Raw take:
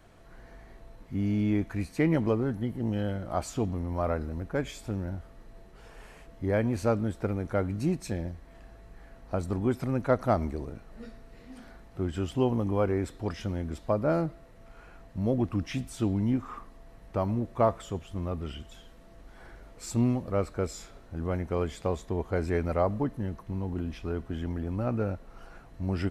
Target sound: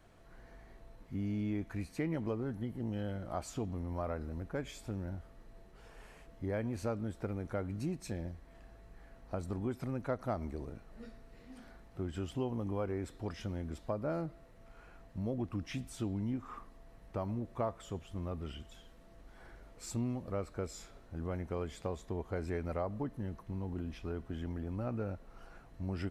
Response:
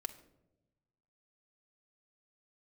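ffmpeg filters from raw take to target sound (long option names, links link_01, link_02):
-af "acompressor=threshold=-30dB:ratio=2,volume=-5.5dB"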